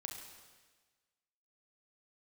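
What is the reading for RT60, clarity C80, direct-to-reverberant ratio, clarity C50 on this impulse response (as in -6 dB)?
1.4 s, 6.0 dB, 2.0 dB, 4.0 dB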